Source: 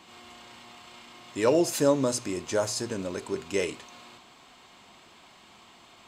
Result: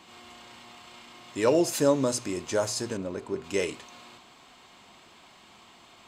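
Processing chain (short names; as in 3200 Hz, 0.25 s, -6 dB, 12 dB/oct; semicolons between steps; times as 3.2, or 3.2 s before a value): 2.97–3.44 high shelf 2100 Hz -11 dB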